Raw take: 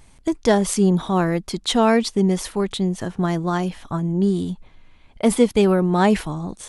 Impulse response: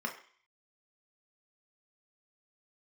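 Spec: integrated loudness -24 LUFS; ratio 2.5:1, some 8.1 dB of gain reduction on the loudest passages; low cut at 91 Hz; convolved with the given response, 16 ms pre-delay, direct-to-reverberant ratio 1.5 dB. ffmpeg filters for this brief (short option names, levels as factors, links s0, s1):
-filter_complex "[0:a]highpass=91,acompressor=threshold=0.0708:ratio=2.5,asplit=2[s0][s1];[1:a]atrim=start_sample=2205,adelay=16[s2];[s1][s2]afir=irnorm=-1:irlink=0,volume=0.531[s3];[s0][s3]amix=inputs=2:normalize=0,volume=0.841"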